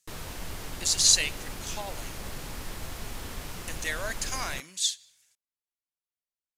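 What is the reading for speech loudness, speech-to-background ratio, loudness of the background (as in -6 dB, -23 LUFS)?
-26.5 LUFS, 13.0 dB, -39.5 LUFS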